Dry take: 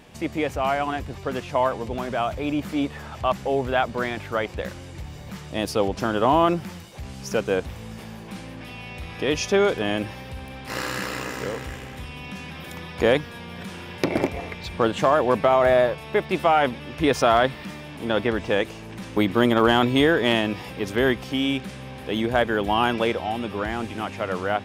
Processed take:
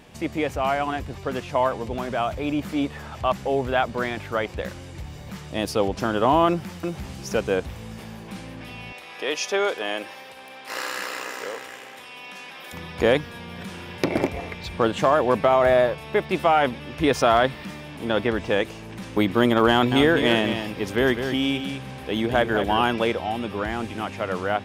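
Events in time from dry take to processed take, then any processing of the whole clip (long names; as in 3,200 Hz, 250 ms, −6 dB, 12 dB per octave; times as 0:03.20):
0:06.48–0:07.12: delay throw 350 ms, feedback 10%, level −4.5 dB
0:08.92–0:12.73: high-pass filter 490 Hz
0:19.71–0:22.83: single-tap delay 204 ms −8 dB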